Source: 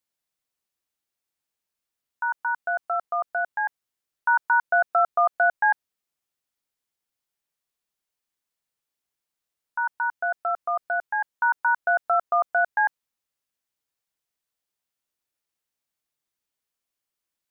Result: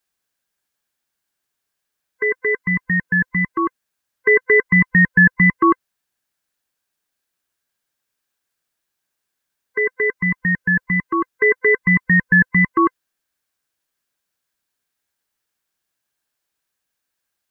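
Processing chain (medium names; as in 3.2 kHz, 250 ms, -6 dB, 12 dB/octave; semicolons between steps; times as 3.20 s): split-band scrambler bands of 500 Hz; peaking EQ 1.6 kHz +8.5 dB 0.21 oct; trim +6.5 dB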